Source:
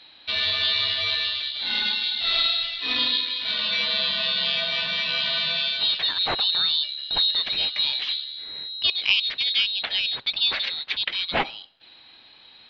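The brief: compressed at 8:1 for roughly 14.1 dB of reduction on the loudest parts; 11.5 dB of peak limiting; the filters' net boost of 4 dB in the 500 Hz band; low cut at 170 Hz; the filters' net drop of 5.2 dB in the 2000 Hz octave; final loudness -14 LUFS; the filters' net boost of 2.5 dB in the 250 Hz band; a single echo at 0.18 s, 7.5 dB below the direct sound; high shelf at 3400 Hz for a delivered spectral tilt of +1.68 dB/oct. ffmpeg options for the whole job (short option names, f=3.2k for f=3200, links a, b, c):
-af "highpass=170,equalizer=f=250:t=o:g=3,equalizer=f=500:t=o:g=5.5,equalizer=f=2k:t=o:g=-4,highshelf=f=3.4k:g=-8,acompressor=threshold=-33dB:ratio=8,alimiter=level_in=8dB:limit=-24dB:level=0:latency=1,volume=-8dB,aecho=1:1:180:0.422,volume=24.5dB"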